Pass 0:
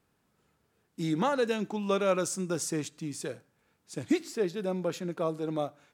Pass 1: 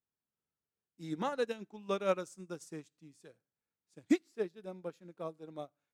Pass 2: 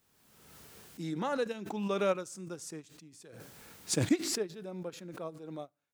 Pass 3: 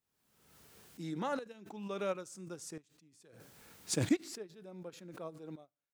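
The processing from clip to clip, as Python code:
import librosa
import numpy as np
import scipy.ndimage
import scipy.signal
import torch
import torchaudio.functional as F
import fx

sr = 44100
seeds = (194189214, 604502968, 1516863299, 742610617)

y1 = fx.upward_expand(x, sr, threshold_db=-38.0, expansion=2.5)
y2 = fx.pre_swell(y1, sr, db_per_s=36.0)
y3 = fx.tremolo_shape(y2, sr, shape='saw_up', hz=0.72, depth_pct=80)
y3 = y3 * librosa.db_to_amplitude(-2.0)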